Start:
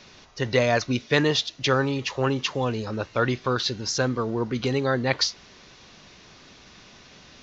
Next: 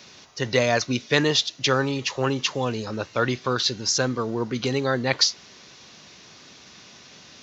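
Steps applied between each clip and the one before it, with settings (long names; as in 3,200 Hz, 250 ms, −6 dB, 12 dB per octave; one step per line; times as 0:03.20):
high-pass filter 96 Hz
high-shelf EQ 6,100 Hz +11.5 dB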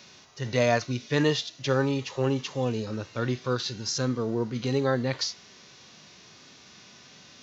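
harmonic and percussive parts rebalanced percussive −12 dB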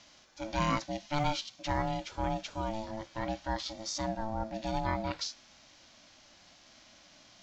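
ring modulation 440 Hz
level −4 dB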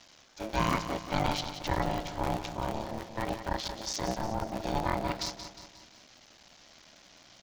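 sub-harmonics by changed cycles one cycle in 3, muted
on a send: repeating echo 179 ms, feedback 49%, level −10 dB
on the sum: level +3 dB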